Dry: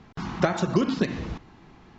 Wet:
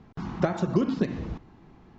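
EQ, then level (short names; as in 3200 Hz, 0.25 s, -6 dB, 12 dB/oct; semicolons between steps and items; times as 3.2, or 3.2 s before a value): tilt shelf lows +4.5 dB, about 1100 Hz; -5.0 dB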